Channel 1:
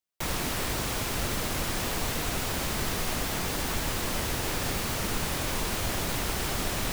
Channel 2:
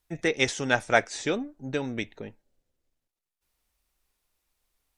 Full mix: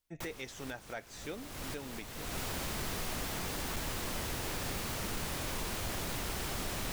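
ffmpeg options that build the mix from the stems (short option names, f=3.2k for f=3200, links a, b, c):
-filter_complex "[0:a]asoftclip=type=hard:threshold=-23.5dB,volume=2dB[a];[1:a]acontrast=75,volume=-18dB,asplit=2[b][c];[c]apad=whole_len=305488[d];[a][d]sidechaincompress=threshold=-56dB:ratio=6:attack=39:release=589[e];[e][b]amix=inputs=2:normalize=0,alimiter=level_in=6.5dB:limit=-24dB:level=0:latency=1:release=307,volume=-6.5dB"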